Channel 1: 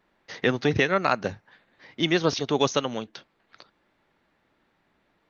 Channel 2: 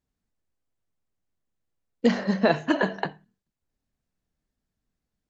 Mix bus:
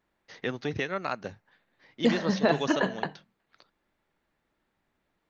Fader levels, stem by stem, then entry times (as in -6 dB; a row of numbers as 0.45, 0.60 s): -9.0, -3.0 dB; 0.00, 0.00 s